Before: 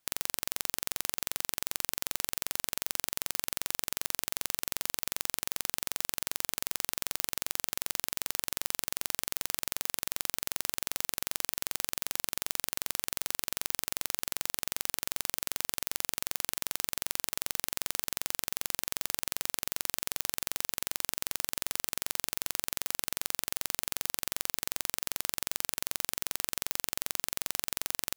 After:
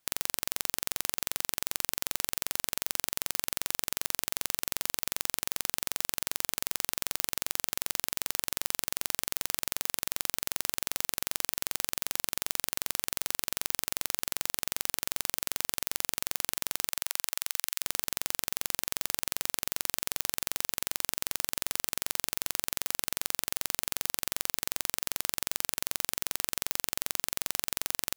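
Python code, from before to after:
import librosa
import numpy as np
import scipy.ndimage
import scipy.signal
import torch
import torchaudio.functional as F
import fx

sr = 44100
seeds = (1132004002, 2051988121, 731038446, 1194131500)

y = fx.highpass(x, sr, hz=fx.line((16.88, 590.0), (17.81, 1400.0)), slope=12, at=(16.88, 17.81), fade=0.02)
y = F.gain(torch.from_numpy(y), 1.5).numpy()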